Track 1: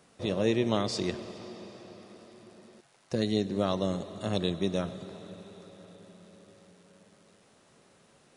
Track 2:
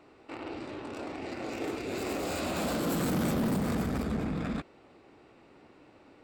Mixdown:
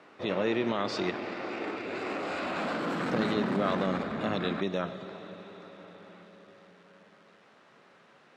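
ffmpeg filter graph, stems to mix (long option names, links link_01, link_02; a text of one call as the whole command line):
ffmpeg -i stem1.wav -i stem2.wav -filter_complex "[0:a]alimiter=limit=-20dB:level=0:latency=1:release=68,volume=0dB[link_01];[1:a]volume=-3dB[link_02];[link_01][link_02]amix=inputs=2:normalize=0,highpass=160,lowpass=4000,equalizer=frequency=1500:width=0.69:gain=8" out.wav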